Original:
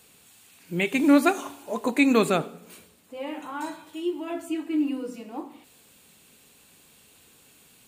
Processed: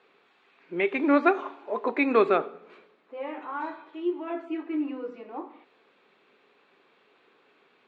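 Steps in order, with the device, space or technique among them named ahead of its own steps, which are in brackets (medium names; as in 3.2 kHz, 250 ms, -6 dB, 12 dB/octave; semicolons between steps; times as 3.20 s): phone earpiece (cabinet simulation 390–3000 Hz, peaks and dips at 390 Hz +7 dB, 1.2 kHz +4 dB, 2.9 kHz -7 dB)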